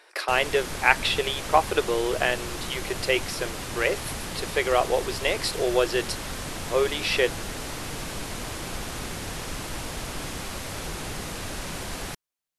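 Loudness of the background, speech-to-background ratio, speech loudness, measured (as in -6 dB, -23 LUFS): -33.5 LUFS, 8.0 dB, -25.5 LUFS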